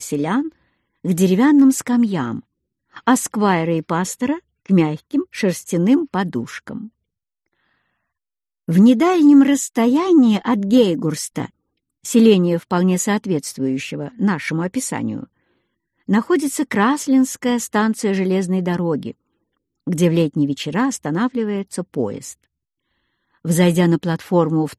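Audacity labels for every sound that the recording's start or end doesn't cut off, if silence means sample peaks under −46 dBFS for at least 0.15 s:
1.040000	2.410000	sound
2.930000	4.400000	sound
4.660000	6.890000	sound
8.680000	11.500000	sound
12.040000	15.260000	sound
16.080000	19.130000	sound
19.870000	22.440000	sound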